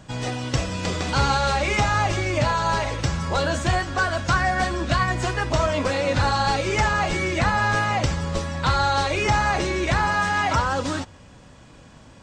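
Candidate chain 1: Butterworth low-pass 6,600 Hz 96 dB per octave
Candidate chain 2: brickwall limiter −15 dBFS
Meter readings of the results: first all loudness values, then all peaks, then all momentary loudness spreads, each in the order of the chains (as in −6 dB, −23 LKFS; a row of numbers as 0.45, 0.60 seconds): −22.5, −24.5 LKFS; −9.0, −15.0 dBFS; 6, 4 LU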